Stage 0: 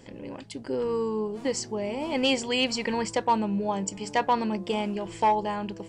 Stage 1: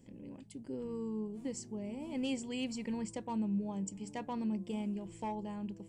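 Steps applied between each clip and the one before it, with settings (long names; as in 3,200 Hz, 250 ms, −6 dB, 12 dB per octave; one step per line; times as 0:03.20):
drawn EQ curve 110 Hz 0 dB, 220 Hz +4 dB, 440 Hz −6 dB, 1,500 Hz −13 dB, 2,400 Hz −8 dB, 4,700 Hz −11 dB, 8,200 Hz 0 dB
level −9 dB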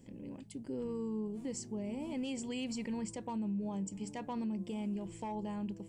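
brickwall limiter −33.5 dBFS, peak gain reduction 7.5 dB
level +2.5 dB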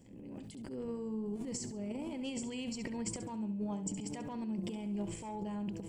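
transient designer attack −7 dB, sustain +11 dB
flutter between parallel walls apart 11.7 metres, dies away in 0.38 s
level −1.5 dB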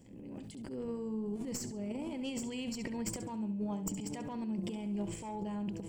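stylus tracing distortion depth 0.031 ms
level +1 dB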